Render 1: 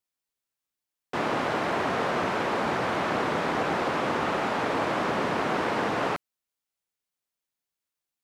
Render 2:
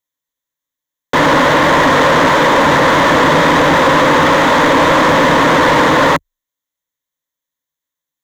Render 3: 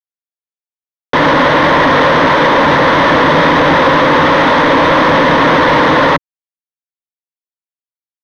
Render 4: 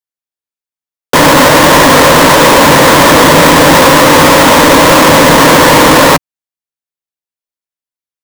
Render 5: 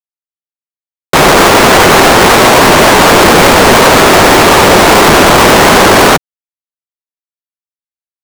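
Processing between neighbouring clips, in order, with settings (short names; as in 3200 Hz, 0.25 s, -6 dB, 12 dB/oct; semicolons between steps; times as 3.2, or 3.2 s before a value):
ripple EQ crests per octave 1.1, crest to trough 11 dB; sample leveller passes 3; bell 1400 Hz +5 dB 0.31 oct; gain +8 dB
limiter -8.5 dBFS, peak gain reduction 5 dB; crossover distortion -35 dBFS; polynomial smoothing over 15 samples; gain +5 dB
half-waves squared off; gain +2 dB
cycle switcher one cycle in 3, inverted; bit-crush 5-bit; Doppler distortion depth 0.7 ms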